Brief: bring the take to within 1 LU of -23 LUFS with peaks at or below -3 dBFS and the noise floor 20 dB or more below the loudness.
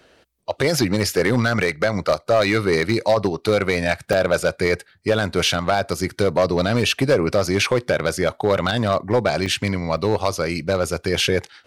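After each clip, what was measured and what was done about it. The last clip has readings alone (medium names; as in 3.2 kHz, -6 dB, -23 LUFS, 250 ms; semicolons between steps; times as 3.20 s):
clipped samples 1.9%; clipping level -10.0 dBFS; dropouts 3; longest dropout 2.0 ms; loudness -20.5 LUFS; peak level -10.0 dBFS; loudness target -23.0 LUFS
-> clip repair -10 dBFS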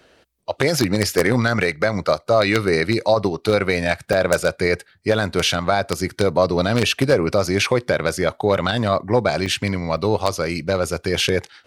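clipped samples 0.0%; dropouts 3; longest dropout 2.0 ms
-> interpolate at 4.13/9.46/9.97 s, 2 ms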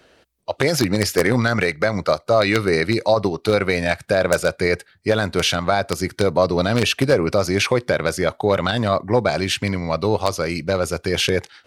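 dropouts 0; loudness -19.5 LUFS; peak level -1.0 dBFS; loudness target -23.0 LUFS
-> trim -3.5 dB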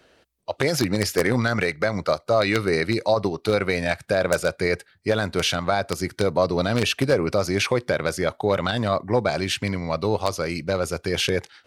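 loudness -23.0 LUFS; peak level -4.5 dBFS; noise floor -61 dBFS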